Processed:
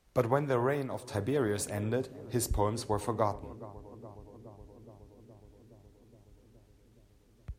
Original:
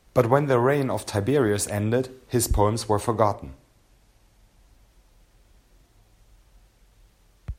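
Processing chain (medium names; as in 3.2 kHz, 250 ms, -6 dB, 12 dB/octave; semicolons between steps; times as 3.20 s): filtered feedback delay 419 ms, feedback 82%, low-pass 1 kHz, level -17 dB; 0.69–1.11 s: upward expansion 1.5:1, over -30 dBFS; trim -9 dB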